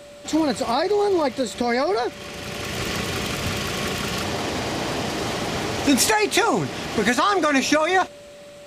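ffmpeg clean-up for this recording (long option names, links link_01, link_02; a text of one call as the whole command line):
ffmpeg -i in.wav -af "bandreject=frequency=580:width=30" out.wav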